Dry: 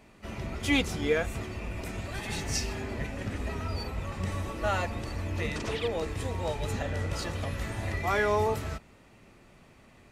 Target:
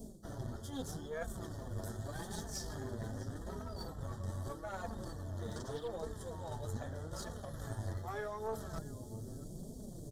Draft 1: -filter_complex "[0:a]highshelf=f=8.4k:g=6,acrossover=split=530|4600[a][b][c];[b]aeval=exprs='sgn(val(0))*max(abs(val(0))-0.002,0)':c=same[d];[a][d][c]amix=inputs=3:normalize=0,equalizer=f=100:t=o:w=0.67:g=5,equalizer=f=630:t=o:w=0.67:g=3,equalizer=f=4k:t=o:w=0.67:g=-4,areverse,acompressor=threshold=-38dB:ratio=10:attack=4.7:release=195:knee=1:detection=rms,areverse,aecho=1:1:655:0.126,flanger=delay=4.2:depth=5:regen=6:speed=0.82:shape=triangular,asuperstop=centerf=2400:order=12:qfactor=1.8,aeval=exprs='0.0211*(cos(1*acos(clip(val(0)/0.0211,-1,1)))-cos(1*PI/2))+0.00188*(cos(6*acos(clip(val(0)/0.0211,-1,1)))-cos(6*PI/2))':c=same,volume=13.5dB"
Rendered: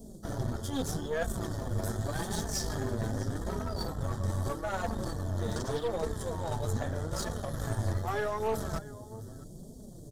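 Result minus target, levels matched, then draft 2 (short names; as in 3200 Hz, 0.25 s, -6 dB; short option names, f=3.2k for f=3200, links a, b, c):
compressor: peak gain reduction -9 dB
-filter_complex "[0:a]highshelf=f=8.4k:g=6,acrossover=split=530|4600[a][b][c];[b]aeval=exprs='sgn(val(0))*max(abs(val(0))-0.002,0)':c=same[d];[a][d][c]amix=inputs=3:normalize=0,equalizer=f=100:t=o:w=0.67:g=5,equalizer=f=630:t=o:w=0.67:g=3,equalizer=f=4k:t=o:w=0.67:g=-4,areverse,acompressor=threshold=-48dB:ratio=10:attack=4.7:release=195:knee=1:detection=rms,areverse,aecho=1:1:655:0.126,flanger=delay=4.2:depth=5:regen=6:speed=0.82:shape=triangular,asuperstop=centerf=2400:order=12:qfactor=1.8,aeval=exprs='0.0211*(cos(1*acos(clip(val(0)/0.0211,-1,1)))-cos(1*PI/2))+0.00188*(cos(6*acos(clip(val(0)/0.0211,-1,1)))-cos(6*PI/2))':c=same,volume=13.5dB"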